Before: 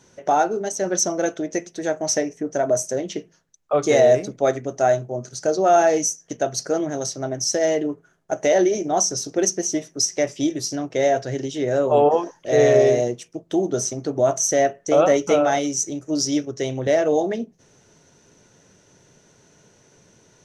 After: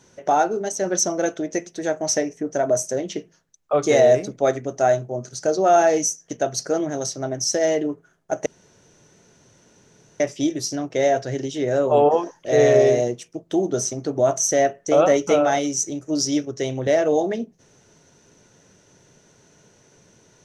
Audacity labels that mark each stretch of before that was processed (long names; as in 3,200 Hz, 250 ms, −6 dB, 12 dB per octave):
8.460000	10.200000	fill with room tone